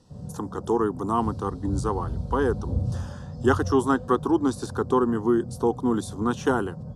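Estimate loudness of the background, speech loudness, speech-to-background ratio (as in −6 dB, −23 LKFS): −34.5 LKFS, −25.5 LKFS, 9.0 dB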